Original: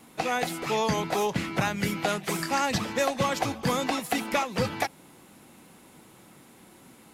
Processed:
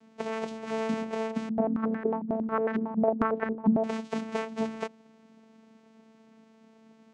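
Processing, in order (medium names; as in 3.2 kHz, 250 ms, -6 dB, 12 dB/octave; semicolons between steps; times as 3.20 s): hum notches 60/120/180/240/300/360/420 Hz; vocoder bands 4, saw 222 Hz; 1.49–3.84 s: step-sequenced low-pass 11 Hz 210–1700 Hz; trim -3.5 dB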